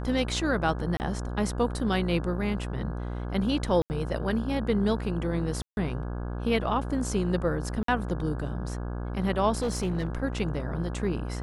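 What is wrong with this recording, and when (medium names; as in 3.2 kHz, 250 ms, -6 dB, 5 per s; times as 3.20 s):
buzz 60 Hz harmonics 28 -33 dBFS
0.97–1.00 s: dropout 29 ms
3.82–3.90 s: dropout 79 ms
5.62–5.77 s: dropout 151 ms
7.83–7.88 s: dropout 53 ms
9.62–10.07 s: clipped -23.5 dBFS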